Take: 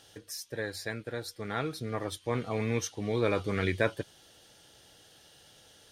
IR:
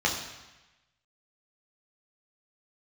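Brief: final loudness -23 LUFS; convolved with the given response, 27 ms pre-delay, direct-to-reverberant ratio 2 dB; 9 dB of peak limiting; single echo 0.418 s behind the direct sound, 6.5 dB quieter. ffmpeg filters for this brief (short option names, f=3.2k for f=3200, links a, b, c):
-filter_complex "[0:a]alimiter=limit=-21dB:level=0:latency=1,aecho=1:1:418:0.473,asplit=2[a][b];[1:a]atrim=start_sample=2205,adelay=27[c];[b][c]afir=irnorm=-1:irlink=0,volume=-14.5dB[d];[a][d]amix=inputs=2:normalize=0,volume=9.5dB"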